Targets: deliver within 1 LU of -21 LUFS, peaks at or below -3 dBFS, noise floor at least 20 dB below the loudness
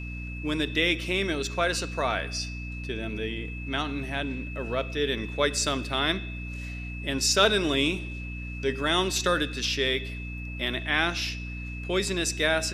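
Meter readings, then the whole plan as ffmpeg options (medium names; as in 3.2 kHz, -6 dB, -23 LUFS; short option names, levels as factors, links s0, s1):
hum 60 Hz; highest harmonic 300 Hz; hum level -34 dBFS; steady tone 2.6 kHz; tone level -40 dBFS; loudness -27.5 LUFS; peak level -6.0 dBFS; loudness target -21.0 LUFS
-> -af "bandreject=f=60:t=h:w=4,bandreject=f=120:t=h:w=4,bandreject=f=180:t=h:w=4,bandreject=f=240:t=h:w=4,bandreject=f=300:t=h:w=4"
-af "bandreject=f=2600:w=30"
-af "volume=2.11,alimiter=limit=0.708:level=0:latency=1"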